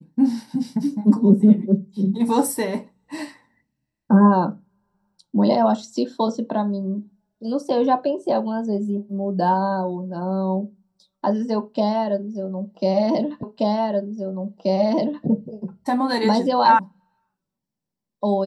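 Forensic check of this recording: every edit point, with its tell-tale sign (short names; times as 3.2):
13.43 repeat of the last 1.83 s
16.79 sound cut off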